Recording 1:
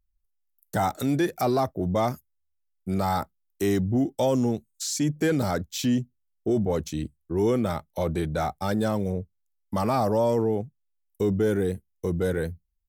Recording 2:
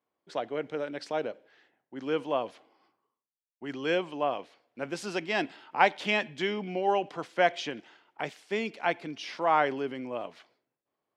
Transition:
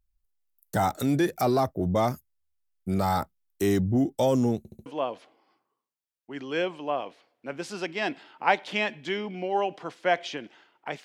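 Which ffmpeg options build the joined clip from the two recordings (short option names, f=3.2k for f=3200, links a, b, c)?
-filter_complex "[0:a]apad=whole_dur=11.04,atrim=end=11.04,asplit=4[a][b][c][d];[a]atrim=end=4.652[e];[b]atrim=start=4.578:end=4.652[f];[c]atrim=start=4.578:end=4.652[g];[d]atrim=start=4.578:end=4.652[h];[1:a]atrim=start=2.188:end=8.37[i];[e][f]acrossfade=d=0.004:c1=hsin:c2=hsin[j];[j][g]acrossfade=d=0.004:c1=hsin:c2=hsin[k];[k][h]acrossfade=d=0.004:c1=hsin:c2=hsin[l];[l][i]acrossfade=d=0.004:c1=hsin:c2=hsin"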